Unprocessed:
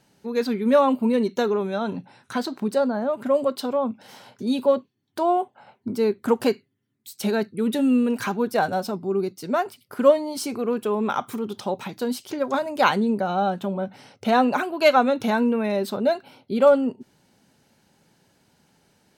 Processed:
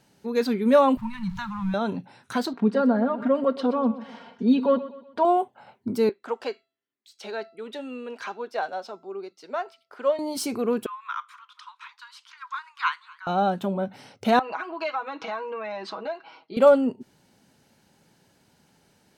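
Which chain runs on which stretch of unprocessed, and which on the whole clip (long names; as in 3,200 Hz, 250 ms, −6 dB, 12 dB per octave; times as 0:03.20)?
0:00.97–0:01.74: converter with a step at zero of −39 dBFS + Chebyshev band-stop filter 180–910 Hz, order 4 + spectral tilt −4 dB per octave
0:02.53–0:05.25: low-pass filter 2,700 Hz + comb filter 4.3 ms, depth 79% + repeating echo 124 ms, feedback 41%, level −15.5 dB
0:06.09–0:10.19: three-way crossover with the lows and the highs turned down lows −24 dB, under 380 Hz, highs −24 dB, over 6,200 Hz + tuned comb filter 670 Hz, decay 0.41 s, mix 50%
0:10.86–0:13.27: Butterworth high-pass 1,000 Hz 96 dB per octave + head-to-tape spacing loss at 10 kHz 23 dB + feedback echo with a swinging delay time 241 ms, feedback 61%, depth 96 cents, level −24 dB
0:14.39–0:16.57: loudspeaker in its box 480–4,900 Hz, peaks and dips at 530 Hz −7 dB, 1,100 Hz +7 dB, 3,600 Hz −8 dB + comb filter 6.2 ms, depth 93% + downward compressor 2.5 to 1, threshold −32 dBFS
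whole clip: no processing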